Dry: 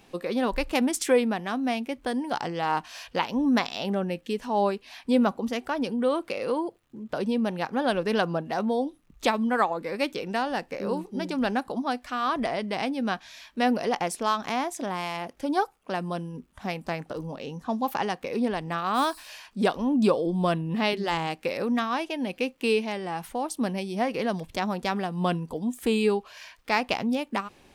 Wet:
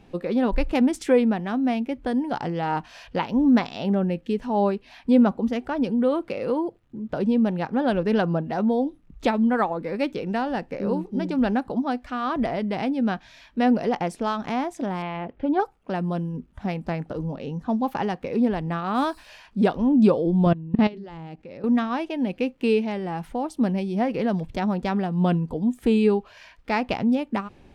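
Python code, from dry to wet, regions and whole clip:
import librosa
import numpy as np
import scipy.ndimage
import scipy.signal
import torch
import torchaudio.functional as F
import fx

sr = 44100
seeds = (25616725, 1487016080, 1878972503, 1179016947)

y = fx.chain(x, sr, fx.lowpass(hz=3300.0, slope=24),
    fx.peak_eq(hz=430.0, db=4.5, octaves=0.24), at=(15.02, 15.6))
y = fx.chain(y, sr, fx.lowpass(hz=7700.0, slope=24),
    fx.low_shelf(hz=490.0, db=6.5),
    fx.level_steps(step_db=21), at=(20.46, 21.64))
y = fx.lowpass(y, sr, hz=2600.0, slope=6)
y = fx.low_shelf(y, sr, hz=270.0, db=10.5)
y = fx.notch(y, sr, hz=1100.0, q=16.0)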